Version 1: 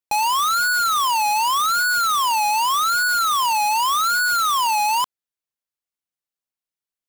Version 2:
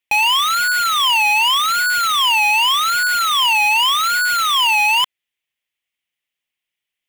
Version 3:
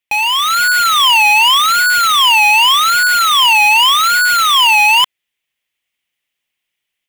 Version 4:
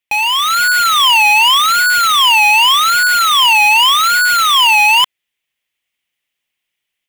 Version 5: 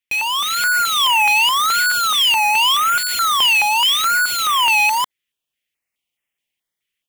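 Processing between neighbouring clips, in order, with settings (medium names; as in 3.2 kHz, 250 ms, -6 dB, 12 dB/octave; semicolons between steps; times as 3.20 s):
high-order bell 2.5 kHz +13.5 dB 1.1 oct; in parallel at +1 dB: peak limiter -18.5 dBFS, peak gain reduction 9.5 dB; on the sum: trim -3 dB
level rider gain up to 6.5 dB
no audible change
step-sequenced notch 4.7 Hz 810–4200 Hz; trim -3 dB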